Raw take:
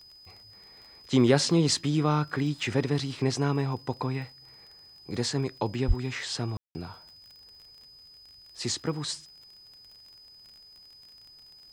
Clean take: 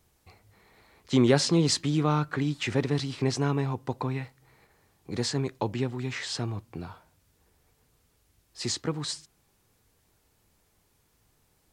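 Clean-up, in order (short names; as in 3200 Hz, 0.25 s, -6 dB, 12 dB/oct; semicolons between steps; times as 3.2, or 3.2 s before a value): de-click; notch 5000 Hz, Q 30; de-plosive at 5.87; room tone fill 6.57–6.75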